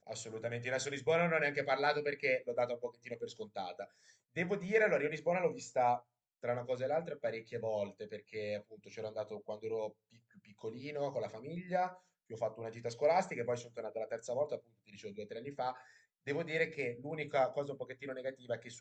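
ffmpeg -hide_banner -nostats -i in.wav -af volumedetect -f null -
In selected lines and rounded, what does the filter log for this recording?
mean_volume: -37.8 dB
max_volume: -17.2 dB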